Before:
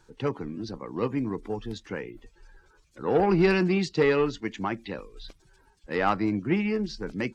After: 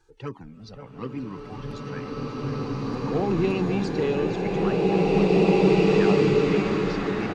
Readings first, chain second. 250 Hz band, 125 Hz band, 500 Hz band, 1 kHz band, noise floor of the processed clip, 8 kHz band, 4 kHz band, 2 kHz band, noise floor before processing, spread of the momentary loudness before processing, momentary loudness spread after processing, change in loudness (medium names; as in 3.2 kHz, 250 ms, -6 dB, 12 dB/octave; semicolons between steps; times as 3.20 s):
+4.5 dB, +6.5 dB, +5.0 dB, +1.5 dB, -46 dBFS, no reading, +3.5 dB, 0.0 dB, -62 dBFS, 15 LU, 18 LU, +4.5 dB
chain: echo from a far wall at 92 m, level -8 dB; touch-sensitive flanger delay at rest 2.5 ms, full sweep at -18.5 dBFS; swelling reverb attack 2300 ms, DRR -8.5 dB; trim -2.5 dB